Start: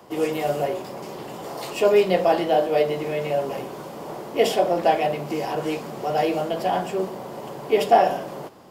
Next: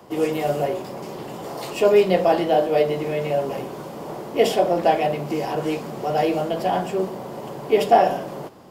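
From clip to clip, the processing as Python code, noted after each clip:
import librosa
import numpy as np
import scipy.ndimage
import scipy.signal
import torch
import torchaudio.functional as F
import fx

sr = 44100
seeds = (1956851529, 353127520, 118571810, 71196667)

y = fx.low_shelf(x, sr, hz=380.0, db=4.0)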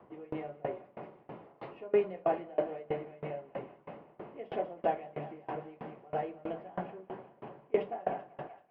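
y = scipy.signal.sosfilt(scipy.signal.butter(4, 2300.0, 'lowpass', fs=sr, output='sos'), x)
y = fx.echo_thinned(y, sr, ms=192, feedback_pct=82, hz=540.0, wet_db=-10.0)
y = fx.tremolo_decay(y, sr, direction='decaying', hz=3.1, depth_db=27)
y = y * librosa.db_to_amplitude(-8.5)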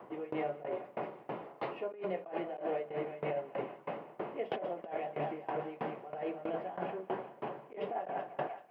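y = fx.peak_eq(x, sr, hz=220.0, db=-4.0, octaves=1.6)
y = fx.over_compress(y, sr, threshold_db=-41.0, ratio=-1.0)
y = scipy.signal.sosfilt(scipy.signal.butter(2, 160.0, 'highpass', fs=sr, output='sos'), y)
y = y * librosa.db_to_amplitude(4.0)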